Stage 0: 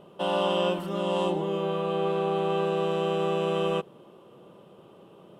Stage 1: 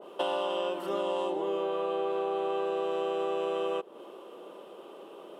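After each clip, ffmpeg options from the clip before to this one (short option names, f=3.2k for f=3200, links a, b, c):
-af "highpass=f=300:w=0.5412,highpass=f=300:w=1.3066,acompressor=threshold=-33dB:ratio=12,adynamicequalizer=threshold=0.00251:dfrequency=1600:dqfactor=0.7:tfrequency=1600:tqfactor=0.7:attack=5:release=100:ratio=0.375:range=2:mode=cutabove:tftype=highshelf,volume=6dB"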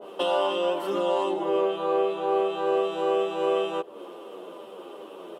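-filter_complex "[0:a]asplit=2[a][b];[b]adelay=9.7,afreqshift=-2.6[c];[a][c]amix=inputs=2:normalize=1,volume=8.5dB"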